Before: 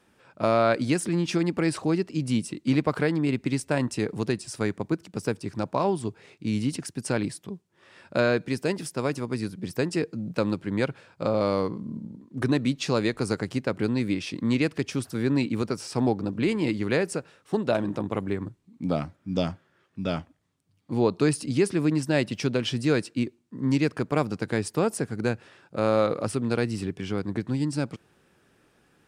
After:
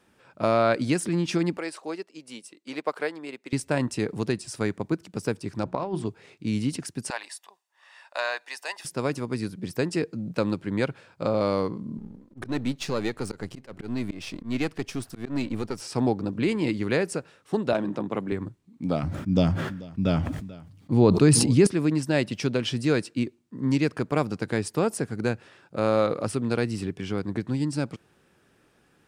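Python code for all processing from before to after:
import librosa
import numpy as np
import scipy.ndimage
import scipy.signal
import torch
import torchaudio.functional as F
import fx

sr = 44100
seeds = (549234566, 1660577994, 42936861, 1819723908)

y = fx.chain(x, sr, fx.cheby1_highpass(hz=520.0, order=2),
    fx.high_shelf(hz=9400.0, db=3.0),
    fx.upward_expand(threshold_db=-44.0, expansion=1.5), at=(1.57, 3.53))
y = fx.chain(y, sr, fx.lowpass(hz=2800.0, slope=6),
    fx.hum_notches(base_hz=60, count=6),
    fx.over_compress(threshold_db=-27.0, ratio=-0.5), at=(5.64, 6.06))
y = fx.chain(y, sr, fx.highpass(hz=680.0, slope=24),
    fx.comb(ms=1.1, depth=0.43), at=(7.1, 8.85))
y = fx.chain(y, sr, fx.halfwave_gain(db=-7.0),
    fx.auto_swell(attack_ms=121.0), at=(11.98, 15.81))
y = fx.chain(y, sr, fx.highpass(hz=130.0, slope=24),
    fx.high_shelf(hz=9400.0, db=-11.0), at=(17.73, 18.32))
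y = fx.chain(y, sr, fx.low_shelf(hz=250.0, db=10.0),
    fx.echo_single(ms=439, db=-22.5),
    fx.sustainer(db_per_s=48.0), at=(19.03, 21.67))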